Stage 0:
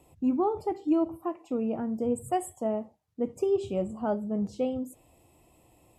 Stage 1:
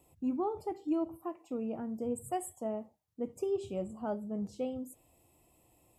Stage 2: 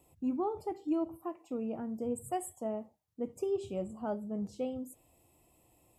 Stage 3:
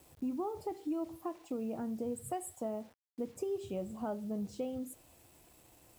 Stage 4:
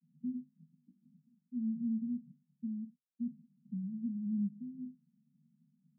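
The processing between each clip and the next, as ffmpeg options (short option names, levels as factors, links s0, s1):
-af "highshelf=f=8500:g=9,volume=0.447"
-af anull
-af "acompressor=threshold=0.01:ratio=3,acrusher=bits=10:mix=0:aa=0.000001,volume=1.58"
-af "asuperpass=centerf=190:order=20:qfactor=1.8,volume=1.68"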